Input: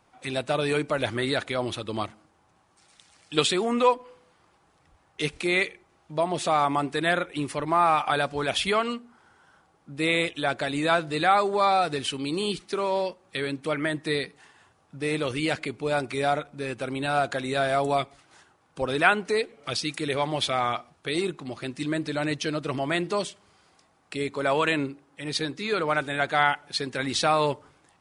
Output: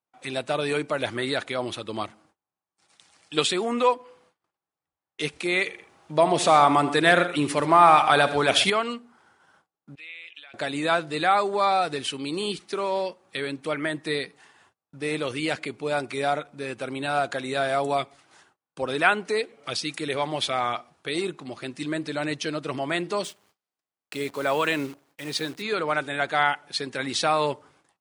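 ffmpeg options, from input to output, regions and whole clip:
ffmpeg -i in.wav -filter_complex "[0:a]asettb=1/sr,asplit=3[link_01][link_02][link_03];[link_01]atrim=end=5.664[link_04];[link_02]atrim=start=5.66:end=8.7,asetpts=PTS-STARTPTS,afade=type=in:duration=0.004:curve=qsin,afade=type=out:start_time=3.036:duration=0.004:curve=qsin,acontrast=62,aecho=1:1:75|127:0.188|0.178,atrim=end_sample=134064[link_05];[link_03]atrim=start=8.696[link_06];[link_04][link_05]acrossfade=duration=0.004:curve1=hsin:curve2=qsin[link_07];[link_07][link_06]acrossfade=duration=0.004:curve1=qsin:curve2=hsin,asettb=1/sr,asplit=3[link_08][link_09][link_10];[link_08]atrim=end=9.954[link_11];[link_09]atrim=start=9.95:end=10.54,asetpts=PTS-STARTPTS,afade=type=in:duration=0.004:curve=qsin,afade=type=out:start_time=0.586:duration=0.004:curve=qsin,acompressor=threshold=-30dB:ratio=10:attack=3.2:release=140:knee=1:detection=peak,bandpass=frequency=2600:width_type=q:width=2.9[link_12];[link_10]atrim=start=10.536[link_13];[link_11][link_12]acrossfade=duration=0.004:curve1=hsin:curve2=qsin[link_14];[link_14][link_13]acrossfade=duration=0.004:curve1=qsin:curve2=hsin,asettb=1/sr,asplit=3[link_15][link_16][link_17];[link_15]atrim=end=23.244[link_18];[link_16]atrim=start=23.24:end=25.62,asetpts=PTS-STARTPTS,afade=type=in:duration=0.004:curve=qsin,afade=type=out:start_time=2.376:duration=0.004:curve=qsin,highpass=54,acrusher=bits=8:dc=4:mix=0:aa=0.000001[link_19];[link_17]atrim=start=25.616[link_20];[link_18][link_19]acrossfade=duration=0.004:curve1=hsin:curve2=qsin[link_21];[link_21][link_20]acrossfade=duration=0.004:curve1=qsin:curve2=hsin,highpass=70,lowshelf=frequency=130:gain=-7.5,agate=range=-28dB:threshold=-59dB:ratio=16:detection=peak" out.wav

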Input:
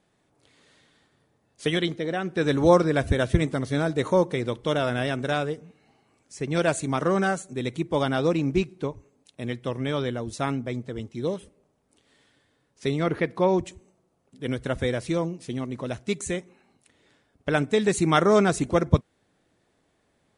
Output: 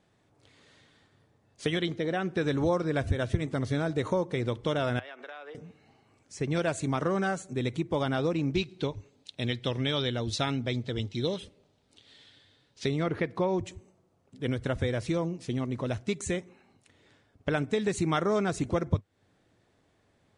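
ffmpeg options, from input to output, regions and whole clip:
ffmpeg -i in.wav -filter_complex "[0:a]asettb=1/sr,asplit=3[link_01][link_02][link_03];[link_01]atrim=end=4.994[link_04];[link_02]atrim=start=4.99:end=5.55,asetpts=PTS-STARTPTS,afade=type=in:duration=0.004:curve=qsin,afade=type=out:start_time=0.556:duration=0.004:curve=qsin,highpass=frequency=280:width=0.5412,highpass=frequency=280:width=1.3066,acrossover=split=580 3700:gain=0.158 1 0.1[link_05][link_06][link_07];[link_05][link_06][link_07]amix=inputs=3:normalize=0,acompressor=threshold=-39dB:ratio=16:attack=3.2:release=140:knee=1:detection=peak[link_08];[link_03]atrim=start=5.546[link_09];[link_04][link_08]acrossfade=duration=0.004:curve1=hsin:curve2=qsin[link_10];[link_10][link_09]acrossfade=duration=0.004:curve1=qsin:curve2=hsin,asettb=1/sr,asplit=3[link_11][link_12][link_13];[link_11]atrim=end=8.544[link_14];[link_12]atrim=start=8.54:end=12.86,asetpts=PTS-STARTPTS,afade=type=in:duration=0.004:curve=qsin,afade=type=out:start_time=4.316:duration=0.004:curve=qsin,equalizer=frequency=3800:width=1.2:gain=13,bandreject=frequency=1100:width=15[link_15];[link_13]atrim=start=12.856[link_16];[link_14][link_15]acrossfade=duration=0.004:curve1=hsin:curve2=qsin[link_17];[link_17][link_16]acrossfade=duration=0.004:curve1=qsin:curve2=hsin,lowpass=7800,equalizer=frequency=100:width=3.1:gain=8.5,acompressor=threshold=-26dB:ratio=3" out.wav

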